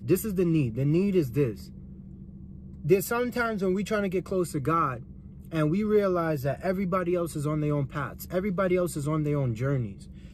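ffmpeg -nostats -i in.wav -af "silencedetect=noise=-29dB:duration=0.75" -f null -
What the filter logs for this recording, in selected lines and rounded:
silence_start: 1.52
silence_end: 2.85 | silence_duration: 1.33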